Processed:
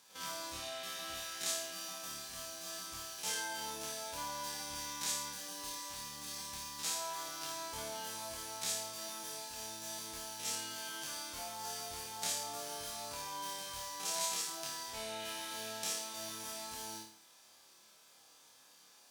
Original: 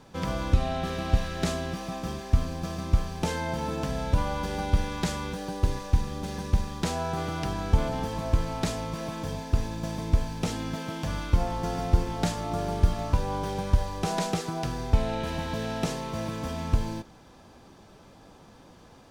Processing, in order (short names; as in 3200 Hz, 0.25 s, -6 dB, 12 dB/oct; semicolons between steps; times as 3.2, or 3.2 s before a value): stepped spectrum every 50 ms; differentiator; flutter echo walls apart 4.7 m, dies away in 0.49 s; gain +3 dB